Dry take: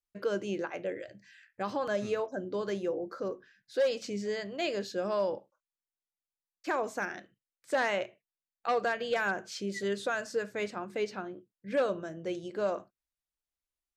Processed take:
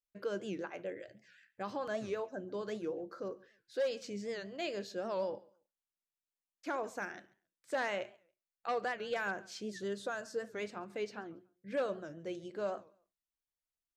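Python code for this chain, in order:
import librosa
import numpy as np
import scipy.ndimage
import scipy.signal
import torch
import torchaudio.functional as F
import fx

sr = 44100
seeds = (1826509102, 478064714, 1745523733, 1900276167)

p1 = fx.peak_eq(x, sr, hz=2300.0, db=-7.0, octaves=0.69, at=(9.71, 10.53))
p2 = p1 + fx.echo_feedback(p1, sr, ms=140, feedback_pct=21, wet_db=-23.5, dry=0)
p3 = fx.record_warp(p2, sr, rpm=78.0, depth_cents=160.0)
y = F.gain(torch.from_numpy(p3), -6.0).numpy()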